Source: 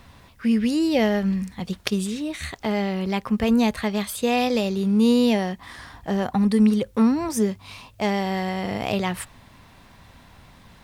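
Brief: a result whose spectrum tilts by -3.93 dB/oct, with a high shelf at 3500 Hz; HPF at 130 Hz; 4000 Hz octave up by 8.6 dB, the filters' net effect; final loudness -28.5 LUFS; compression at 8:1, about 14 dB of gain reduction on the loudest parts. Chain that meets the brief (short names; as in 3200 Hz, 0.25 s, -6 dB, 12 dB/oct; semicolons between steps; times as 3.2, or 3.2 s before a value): HPF 130 Hz; high shelf 3500 Hz +3.5 dB; bell 4000 Hz +8.5 dB; compressor 8:1, threshold -30 dBFS; gain +5 dB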